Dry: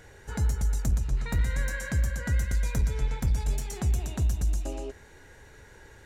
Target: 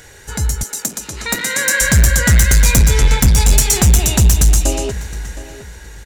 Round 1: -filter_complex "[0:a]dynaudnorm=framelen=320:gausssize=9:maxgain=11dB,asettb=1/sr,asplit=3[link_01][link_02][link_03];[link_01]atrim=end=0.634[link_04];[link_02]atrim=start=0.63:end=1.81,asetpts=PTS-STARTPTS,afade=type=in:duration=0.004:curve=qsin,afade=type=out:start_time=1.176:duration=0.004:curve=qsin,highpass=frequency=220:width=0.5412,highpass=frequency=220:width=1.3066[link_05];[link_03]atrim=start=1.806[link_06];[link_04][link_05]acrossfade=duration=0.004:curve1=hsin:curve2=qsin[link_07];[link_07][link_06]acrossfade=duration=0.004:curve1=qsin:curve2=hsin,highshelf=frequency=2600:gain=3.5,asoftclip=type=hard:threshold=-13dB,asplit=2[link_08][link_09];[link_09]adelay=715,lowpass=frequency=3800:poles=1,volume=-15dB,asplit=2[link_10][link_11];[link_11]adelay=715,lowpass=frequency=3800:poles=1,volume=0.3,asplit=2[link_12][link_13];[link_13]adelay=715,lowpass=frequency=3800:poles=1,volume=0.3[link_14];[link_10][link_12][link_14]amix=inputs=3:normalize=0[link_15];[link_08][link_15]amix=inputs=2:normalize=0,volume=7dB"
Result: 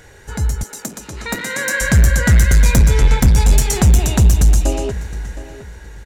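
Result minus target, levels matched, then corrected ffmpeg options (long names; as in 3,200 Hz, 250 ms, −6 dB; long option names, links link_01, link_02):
4,000 Hz band −5.0 dB
-filter_complex "[0:a]dynaudnorm=framelen=320:gausssize=9:maxgain=11dB,asettb=1/sr,asplit=3[link_01][link_02][link_03];[link_01]atrim=end=0.634[link_04];[link_02]atrim=start=0.63:end=1.81,asetpts=PTS-STARTPTS,afade=type=in:duration=0.004:curve=qsin,afade=type=out:start_time=1.176:duration=0.004:curve=qsin,highpass=frequency=220:width=0.5412,highpass=frequency=220:width=1.3066[link_05];[link_03]atrim=start=1.806[link_06];[link_04][link_05]acrossfade=duration=0.004:curve1=hsin:curve2=qsin[link_07];[link_07][link_06]acrossfade=duration=0.004:curve1=qsin:curve2=hsin,highshelf=frequency=2600:gain=13,asoftclip=type=hard:threshold=-13dB,asplit=2[link_08][link_09];[link_09]adelay=715,lowpass=frequency=3800:poles=1,volume=-15dB,asplit=2[link_10][link_11];[link_11]adelay=715,lowpass=frequency=3800:poles=1,volume=0.3,asplit=2[link_12][link_13];[link_13]adelay=715,lowpass=frequency=3800:poles=1,volume=0.3[link_14];[link_10][link_12][link_14]amix=inputs=3:normalize=0[link_15];[link_08][link_15]amix=inputs=2:normalize=0,volume=7dB"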